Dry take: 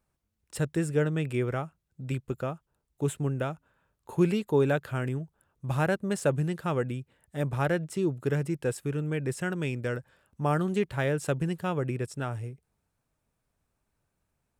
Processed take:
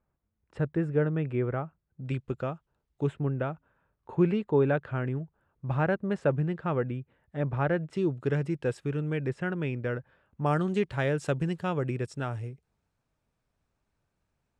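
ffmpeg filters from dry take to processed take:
ffmpeg -i in.wav -af "asetnsamples=nb_out_samples=441:pad=0,asendcmd='2.06 lowpass f 4100;3.07 lowpass f 2200;7.93 lowpass f 4400;9.29 lowpass f 2500;10.46 lowpass f 6200',lowpass=1700" out.wav

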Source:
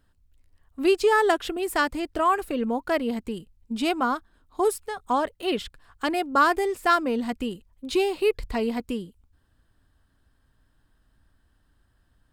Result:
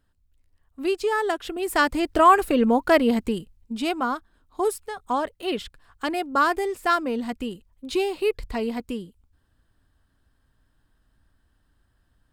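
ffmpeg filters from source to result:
ffmpeg -i in.wav -af "volume=7dB,afade=type=in:start_time=1.42:duration=0.78:silence=0.281838,afade=type=out:start_time=3.24:duration=0.49:silence=0.398107" out.wav

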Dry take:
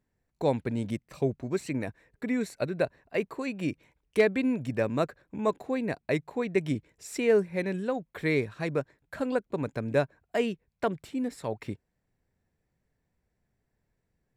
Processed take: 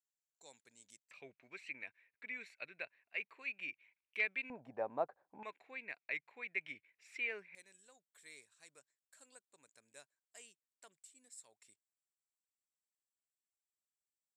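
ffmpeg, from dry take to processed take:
ffmpeg -i in.wav -af "asetnsamples=nb_out_samples=441:pad=0,asendcmd='1.11 bandpass f 2400;4.5 bandpass f 800;5.43 bandpass f 2300;7.55 bandpass f 8000',bandpass=frequency=7100:width_type=q:width=4.5:csg=0" out.wav

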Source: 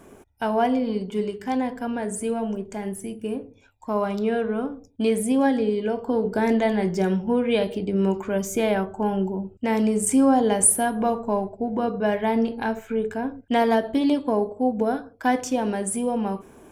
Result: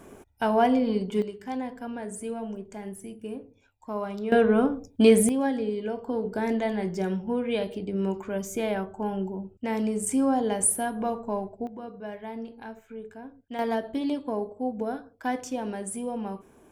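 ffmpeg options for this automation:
ffmpeg -i in.wav -af "asetnsamples=nb_out_samples=441:pad=0,asendcmd='1.22 volume volume -7.5dB;4.32 volume volume 5dB;5.29 volume volume -6dB;11.67 volume volume -15dB;13.59 volume volume -7.5dB',volume=0dB" out.wav

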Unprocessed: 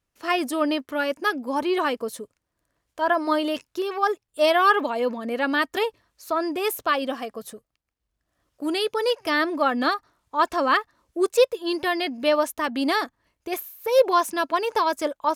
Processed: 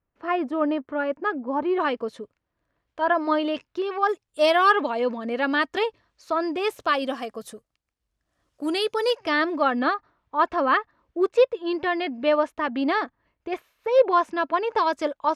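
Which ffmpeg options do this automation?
ffmpeg -i in.wav -af "asetnsamples=nb_out_samples=441:pad=0,asendcmd='1.8 lowpass f 3300;4.09 lowpass f 8500;4.72 lowpass f 4900;6.8 lowpass f 10000;9.17 lowpass f 4400;9.79 lowpass f 2600;14.78 lowpass f 4400',lowpass=1500" out.wav

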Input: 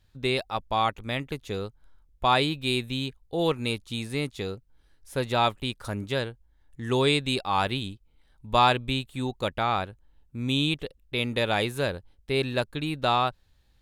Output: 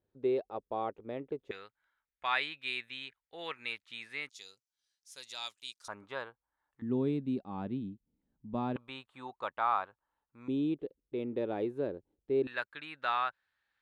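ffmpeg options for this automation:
ffmpeg -i in.wav -af "asetnsamples=nb_out_samples=441:pad=0,asendcmd='1.51 bandpass f 1900;4.29 bandpass f 6000;5.88 bandpass f 1100;6.82 bandpass f 230;8.76 bandpass f 1100;10.48 bandpass f 350;12.47 bandpass f 1600',bandpass=frequency=420:width_type=q:width=2.4:csg=0" out.wav

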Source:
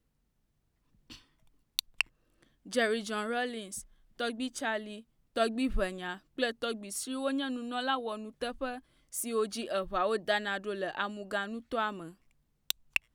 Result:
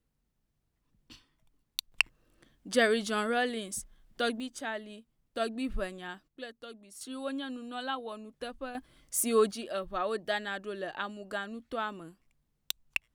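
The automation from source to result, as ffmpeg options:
ffmpeg -i in.wav -af "asetnsamples=nb_out_samples=441:pad=0,asendcmd='1.92 volume volume 3.5dB;4.4 volume volume -3.5dB;6.28 volume volume -12dB;7.01 volume volume -4dB;8.75 volume volume 6dB;9.51 volume volume -2.5dB',volume=-3dB" out.wav

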